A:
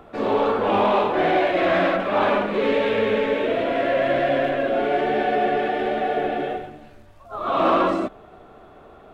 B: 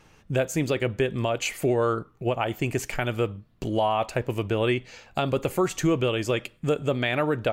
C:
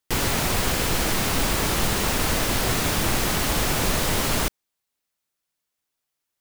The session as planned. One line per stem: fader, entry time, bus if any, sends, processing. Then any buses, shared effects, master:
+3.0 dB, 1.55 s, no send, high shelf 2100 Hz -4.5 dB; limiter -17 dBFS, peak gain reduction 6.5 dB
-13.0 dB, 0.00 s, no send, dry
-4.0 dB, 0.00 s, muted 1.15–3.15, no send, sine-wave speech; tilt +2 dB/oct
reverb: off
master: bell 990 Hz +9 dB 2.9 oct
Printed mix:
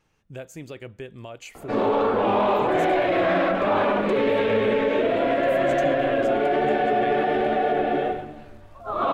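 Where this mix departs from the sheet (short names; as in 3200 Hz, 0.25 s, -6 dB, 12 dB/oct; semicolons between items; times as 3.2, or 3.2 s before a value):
stem C: muted; master: missing bell 990 Hz +9 dB 2.9 oct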